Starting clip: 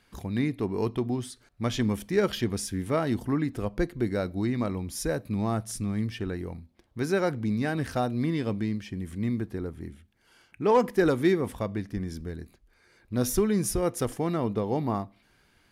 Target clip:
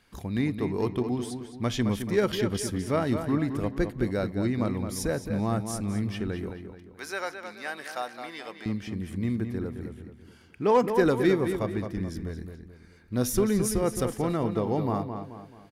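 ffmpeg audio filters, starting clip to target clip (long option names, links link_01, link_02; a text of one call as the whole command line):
ffmpeg -i in.wav -filter_complex "[0:a]asettb=1/sr,asplit=3[link_01][link_02][link_03];[link_01]atrim=end=6.504[link_04];[link_02]atrim=start=6.5:end=8.66,asetpts=PTS-STARTPTS,afade=type=in:duration=0.004:curve=qsin,afade=type=out:start_time=2.156:duration=0.004:curve=qsin,highpass=830[link_05];[link_03]atrim=start=8.656[link_06];[link_04][link_05]acrossfade=duration=0.004:curve1=hsin:curve2=qsin[link_07];[link_07][link_06]acrossfade=duration=0.004:curve1=qsin:curve2=hsin,asplit=2[link_08][link_09];[link_09]adelay=216,lowpass=frequency=4100:poles=1,volume=-7.5dB,asplit=2[link_10][link_11];[link_11]adelay=216,lowpass=frequency=4100:poles=1,volume=0.41,asplit=2[link_12][link_13];[link_13]adelay=216,lowpass=frequency=4100:poles=1,volume=0.41,asplit=2[link_14][link_15];[link_15]adelay=216,lowpass=frequency=4100:poles=1,volume=0.41,asplit=2[link_16][link_17];[link_17]adelay=216,lowpass=frequency=4100:poles=1,volume=0.41[link_18];[link_08][link_10][link_12][link_14][link_16][link_18]amix=inputs=6:normalize=0" out.wav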